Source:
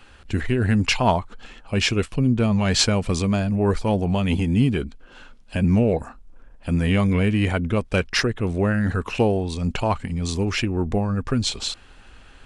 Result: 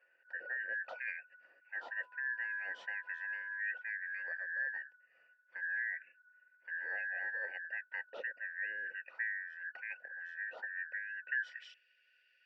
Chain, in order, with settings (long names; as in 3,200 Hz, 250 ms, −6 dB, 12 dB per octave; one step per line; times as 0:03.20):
band-splitting scrambler in four parts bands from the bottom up 2143
formant filter e
0:01.82–0:03.59: steady tone 1,000 Hz −61 dBFS
band-pass filter sweep 1,000 Hz → 3,500 Hz, 0:11.21–0:11.84